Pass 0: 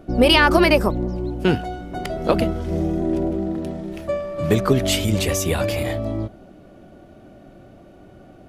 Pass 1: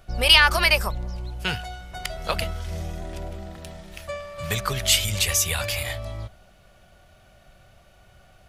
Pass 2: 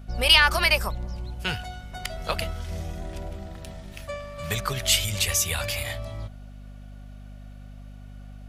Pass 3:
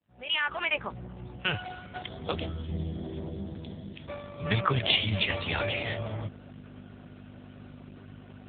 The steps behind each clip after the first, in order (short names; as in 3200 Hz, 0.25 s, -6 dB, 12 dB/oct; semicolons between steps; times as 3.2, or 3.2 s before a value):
passive tone stack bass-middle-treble 10-0-10; gain +5.5 dB
hum 50 Hz, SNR 14 dB; gain -2 dB
opening faded in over 2.25 s; spectral gain 2.01–4.45, 540–3100 Hz -9 dB; gain +5 dB; AMR-NB 5.9 kbps 8000 Hz